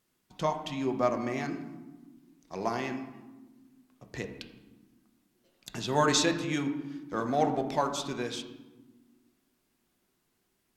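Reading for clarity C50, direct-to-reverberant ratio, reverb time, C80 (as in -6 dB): 9.0 dB, 4.5 dB, 1.3 s, 10.5 dB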